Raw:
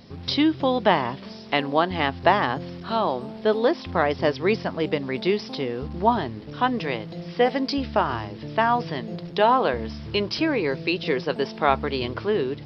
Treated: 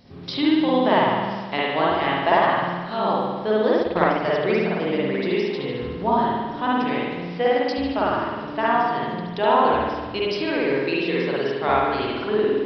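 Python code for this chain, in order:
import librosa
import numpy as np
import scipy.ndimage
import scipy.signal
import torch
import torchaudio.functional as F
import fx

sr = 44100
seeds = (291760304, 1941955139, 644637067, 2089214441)

y = fx.rev_spring(x, sr, rt60_s=1.4, pass_ms=(51,), chirp_ms=25, drr_db=-6.5)
y = fx.transient(y, sr, attack_db=11, sustain_db=-8, at=(3.79, 4.26), fade=0.02)
y = y * 10.0 ** (-5.5 / 20.0)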